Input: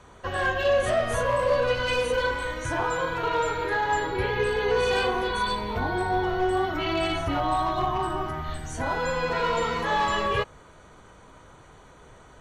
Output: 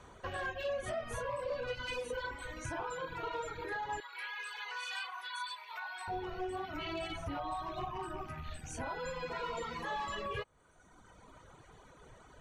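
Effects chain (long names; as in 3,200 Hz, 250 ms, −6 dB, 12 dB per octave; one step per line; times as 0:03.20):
loose part that buzzes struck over −35 dBFS, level −34 dBFS
reverb reduction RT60 1.3 s
0:04.00–0:06.08: inverse Chebyshev high-pass filter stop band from 170 Hz, stop band 80 dB
downward compressor 2 to 1, threshold −38 dBFS, peak gain reduction 10 dB
level −4 dB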